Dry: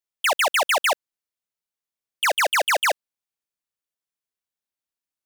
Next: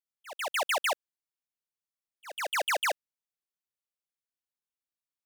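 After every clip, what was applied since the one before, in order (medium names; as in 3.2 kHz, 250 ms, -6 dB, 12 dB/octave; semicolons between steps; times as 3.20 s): slow attack 395 ms; trim -8 dB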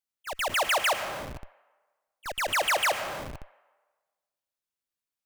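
reverberation RT60 1.4 s, pre-delay 65 ms, DRR 11.5 dB; in parallel at -4 dB: Schmitt trigger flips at -47.5 dBFS; on the sum: trim +2 dB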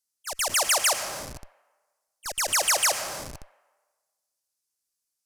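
high-order bell 7.5 kHz +13.5 dB; trim -1.5 dB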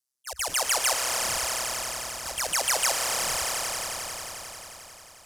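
ring modulator 65 Hz; echo with a slow build-up 89 ms, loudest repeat 5, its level -9 dB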